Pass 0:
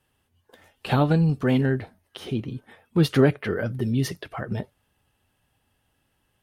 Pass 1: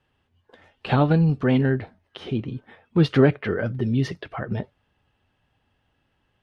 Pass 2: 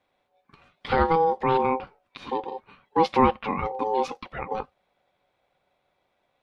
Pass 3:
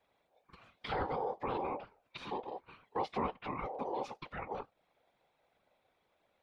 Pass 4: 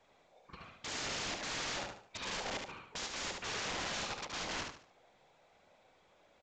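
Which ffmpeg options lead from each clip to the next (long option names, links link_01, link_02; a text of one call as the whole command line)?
ffmpeg -i in.wav -af "lowpass=3800,volume=1.5dB" out.wav
ffmpeg -i in.wav -af "aeval=exprs='val(0)*sin(2*PI*650*n/s)':channel_layout=same" out.wav
ffmpeg -i in.wav -af "afftfilt=real='hypot(re,im)*cos(2*PI*random(0))':imag='hypot(re,im)*sin(2*PI*random(1))':win_size=512:overlap=0.75,acompressor=threshold=-45dB:ratio=2,volume=2.5dB" out.wav
ffmpeg -i in.wav -filter_complex "[0:a]aeval=exprs='(mod(106*val(0)+1,2)-1)/106':channel_layout=same,asplit=2[link_01][link_02];[link_02]aecho=0:1:73|146|219|292:0.596|0.191|0.061|0.0195[link_03];[link_01][link_03]amix=inputs=2:normalize=0,volume=6dB" -ar 16000 -c:a pcm_mulaw out.wav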